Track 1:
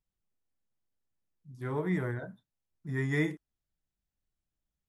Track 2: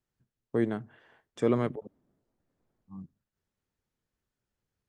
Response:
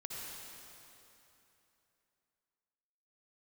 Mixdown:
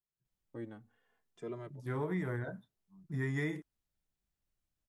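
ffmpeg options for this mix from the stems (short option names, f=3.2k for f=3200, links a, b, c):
-filter_complex "[0:a]adelay=250,volume=0dB[a];[1:a]asplit=2[b][c];[c]adelay=2.5,afreqshift=-0.71[d];[b][d]amix=inputs=2:normalize=1,volume=-13.5dB[e];[a][e]amix=inputs=2:normalize=0,acompressor=threshold=-31dB:ratio=10"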